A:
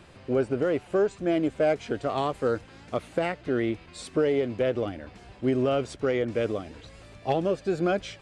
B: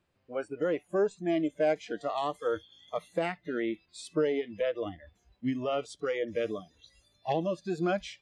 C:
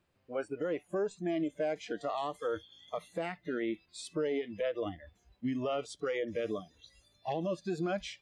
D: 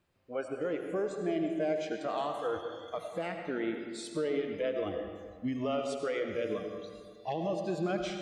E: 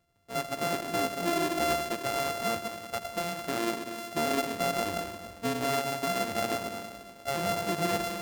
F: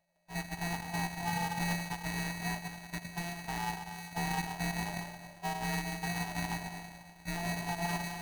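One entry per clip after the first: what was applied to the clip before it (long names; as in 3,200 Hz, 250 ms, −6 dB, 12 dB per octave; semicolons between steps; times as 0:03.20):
healed spectral selection 0:02.44–0:02.89, 2,500–5,100 Hz after; noise reduction from a noise print of the clip's start 22 dB; level −3 dB
brickwall limiter −25.5 dBFS, peak gain reduction 8 dB
convolution reverb RT60 1.9 s, pre-delay 50 ms, DRR 4 dB
samples sorted by size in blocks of 64 samples; level +3 dB
neighbouring bands swapped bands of 500 Hz; level −5.5 dB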